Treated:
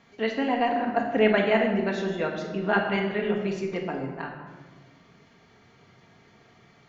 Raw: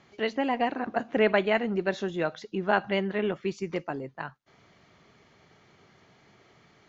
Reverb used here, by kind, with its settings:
rectangular room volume 1,200 cubic metres, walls mixed, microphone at 1.7 metres
level −1 dB

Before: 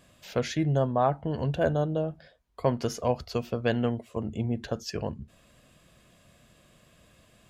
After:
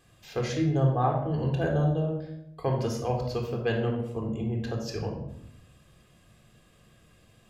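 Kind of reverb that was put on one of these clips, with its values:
rectangular room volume 1,900 cubic metres, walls furnished, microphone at 3.8 metres
level −5 dB

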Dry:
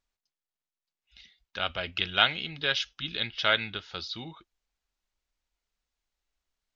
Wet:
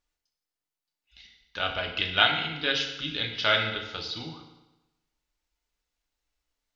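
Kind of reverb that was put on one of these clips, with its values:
feedback delay network reverb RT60 1 s, low-frequency decay 1×, high-frequency decay 0.9×, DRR 1.5 dB

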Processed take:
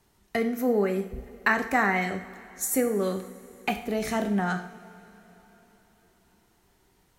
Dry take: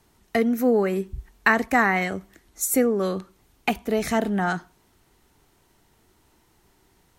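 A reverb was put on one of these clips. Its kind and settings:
coupled-rooms reverb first 0.57 s, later 4.1 s, from −18 dB, DRR 6 dB
level −4.5 dB

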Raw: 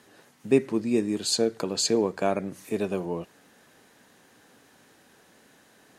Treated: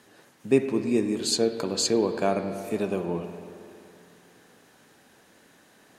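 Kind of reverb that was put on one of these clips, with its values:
spring reverb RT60 2.6 s, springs 46/52 ms, chirp 50 ms, DRR 7.5 dB

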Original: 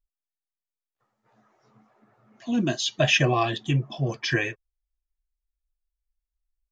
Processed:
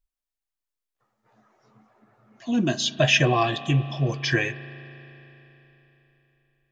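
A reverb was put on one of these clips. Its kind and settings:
spring reverb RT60 3.7 s, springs 36 ms, chirp 40 ms, DRR 14.5 dB
level +1.5 dB

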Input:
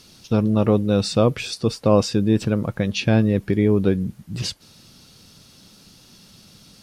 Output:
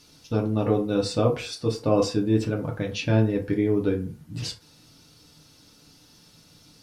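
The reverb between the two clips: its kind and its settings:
feedback delay network reverb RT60 0.39 s, low-frequency decay 0.75×, high-frequency decay 0.55×, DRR −0.5 dB
level −7.5 dB

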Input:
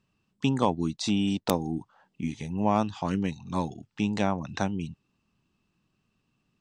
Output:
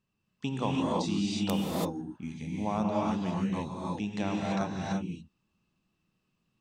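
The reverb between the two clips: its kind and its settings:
reverb whose tail is shaped and stops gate 360 ms rising, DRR −3.5 dB
level −8 dB

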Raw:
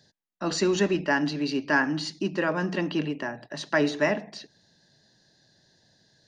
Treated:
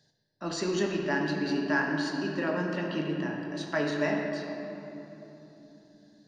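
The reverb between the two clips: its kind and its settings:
rectangular room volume 190 cubic metres, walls hard, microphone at 0.44 metres
level −7 dB

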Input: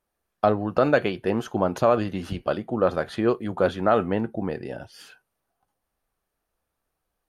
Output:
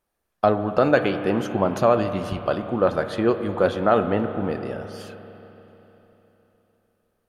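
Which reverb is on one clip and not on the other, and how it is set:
spring reverb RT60 3.7 s, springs 30/50 ms, chirp 50 ms, DRR 8.5 dB
level +1.5 dB

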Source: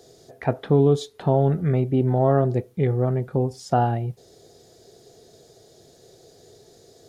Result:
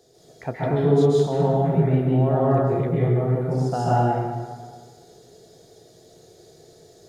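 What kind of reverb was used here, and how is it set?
dense smooth reverb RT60 1.6 s, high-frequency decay 0.65×, pre-delay 120 ms, DRR −7.5 dB
level −7 dB

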